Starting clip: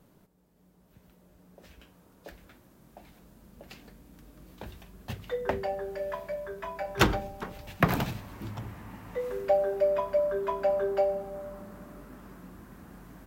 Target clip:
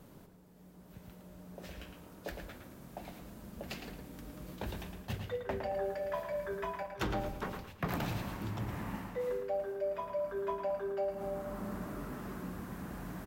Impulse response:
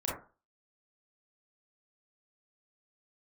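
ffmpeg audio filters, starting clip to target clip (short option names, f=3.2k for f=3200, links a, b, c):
-filter_complex "[0:a]areverse,acompressor=threshold=-40dB:ratio=5,areverse,asplit=2[a][b];[b]adelay=111,lowpass=f=4.3k:p=1,volume=-6dB,asplit=2[c][d];[d]adelay=111,lowpass=f=4.3k:p=1,volume=0.36,asplit=2[e][f];[f]adelay=111,lowpass=f=4.3k:p=1,volume=0.36,asplit=2[g][h];[h]adelay=111,lowpass=f=4.3k:p=1,volume=0.36[i];[a][c][e][g][i]amix=inputs=5:normalize=0,volume=5dB"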